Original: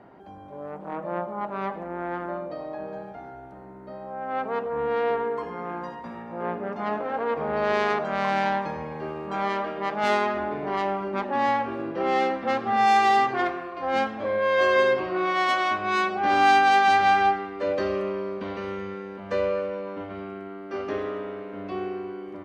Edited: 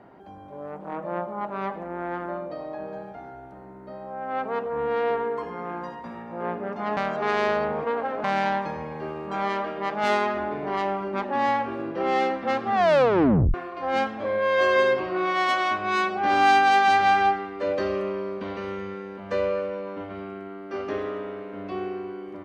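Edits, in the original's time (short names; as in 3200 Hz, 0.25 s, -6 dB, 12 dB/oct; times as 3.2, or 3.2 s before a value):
6.97–8.24 reverse
12.74 tape stop 0.80 s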